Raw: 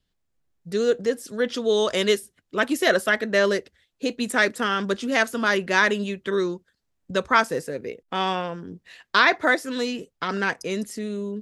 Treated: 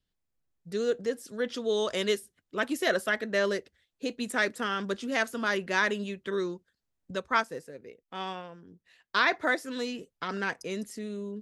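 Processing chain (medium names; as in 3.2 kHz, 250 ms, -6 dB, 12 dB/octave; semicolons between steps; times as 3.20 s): 7.15–9.21 s: upward expansion 1.5:1, over -30 dBFS; trim -7 dB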